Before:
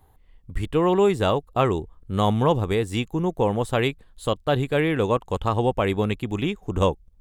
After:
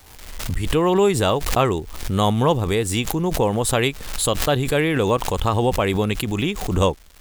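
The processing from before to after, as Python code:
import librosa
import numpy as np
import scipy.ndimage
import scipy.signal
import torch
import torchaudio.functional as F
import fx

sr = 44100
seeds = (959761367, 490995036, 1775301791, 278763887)

y = fx.high_shelf(x, sr, hz=3900.0, db=9.0)
y = fx.dmg_crackle(y, sr, seeds[0], per_s=480.0, level_db=-41.0)
y = fx.pre_swell(y, sr, db_per_s=53.0)
y = F.gain(torch.from_numpy(y), 1.5).numpy()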